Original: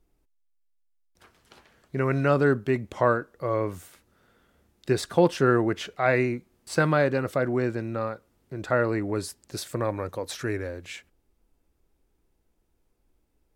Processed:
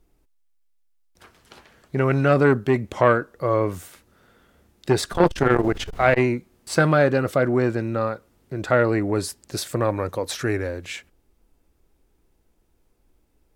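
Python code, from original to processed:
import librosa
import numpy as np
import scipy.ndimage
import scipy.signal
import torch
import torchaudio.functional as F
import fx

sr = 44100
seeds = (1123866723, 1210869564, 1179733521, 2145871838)

y = fx.dmg_noise_colour(x, sr, seeds[0], colour='brown', level_db=-37.0, at=(5.12, 6.18), fade=0.02)
y = fx.transformer_sat(y, sr, knee_hz=660.0)
y = y * librosa.db_to_amplitude(6.0)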